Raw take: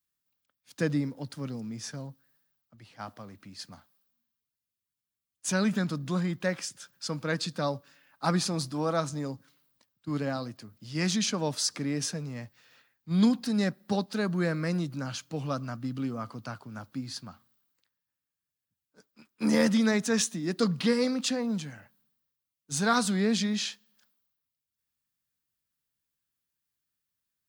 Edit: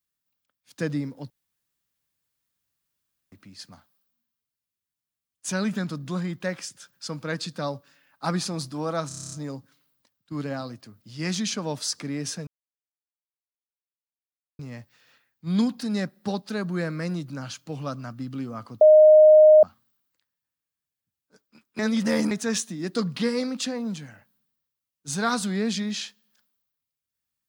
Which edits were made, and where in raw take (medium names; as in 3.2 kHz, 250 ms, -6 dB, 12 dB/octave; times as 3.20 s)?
1.30–3.32 s: room tone
9.08 s: stutter 0.03 s, 9 plays
12.23 s: insert silence 2.12 s
16.45–17.27 s: bleep 617 Hz -9 dBFS
19.43–19.95 s: reverse